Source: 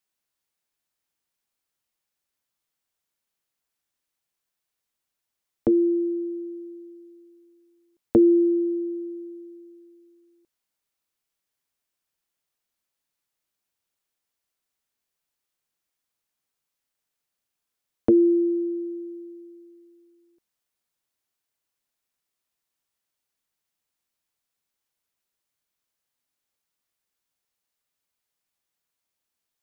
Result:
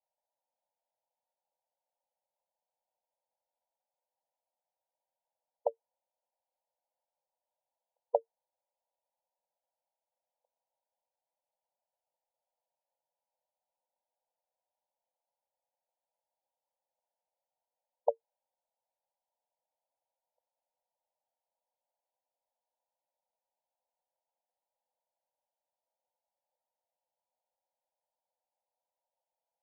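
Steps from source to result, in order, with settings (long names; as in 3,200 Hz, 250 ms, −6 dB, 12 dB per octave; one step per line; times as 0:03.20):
linear-phase brick-wall band-pass 480–1,000 Hz
level +6 dB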